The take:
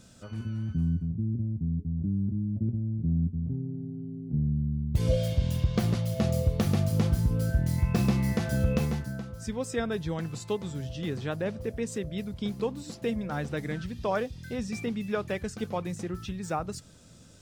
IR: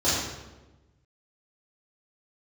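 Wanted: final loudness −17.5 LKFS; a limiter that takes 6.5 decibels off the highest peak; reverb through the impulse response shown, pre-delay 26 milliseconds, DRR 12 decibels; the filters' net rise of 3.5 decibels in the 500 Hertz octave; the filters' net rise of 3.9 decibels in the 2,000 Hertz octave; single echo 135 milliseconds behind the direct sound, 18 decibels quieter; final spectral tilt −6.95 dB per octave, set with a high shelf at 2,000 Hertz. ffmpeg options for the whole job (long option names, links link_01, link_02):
-filter_complex "[0:a]equalizer=frequency=500:width_type=o:gain=4,highshelf=frequency=2000:gain=-4.5,equalizer=frequency=2000:width_type=o:gain=7.5,alimiter=limit=-18dB:level=0:latency=1,aecho=1:1:135:0.126,asplit=2[link_01][link_02];[1:a]atrim=start_sample=2205,adelay=26[link_03];[link_02][link_03]afir=irnorm=-1:irlink=0,volume=-27dB[link_04];[link_01][link_04]amix=inputs=2:normalize=0,volume=12dB"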